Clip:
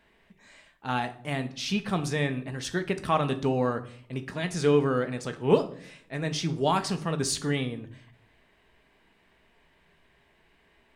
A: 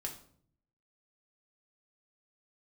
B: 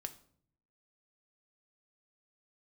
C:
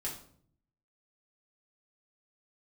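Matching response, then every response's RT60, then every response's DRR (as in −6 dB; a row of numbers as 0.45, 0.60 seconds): B; 0.55, 0.60, 0.55 seconds; 0.0, 7.5, −5.5 decibels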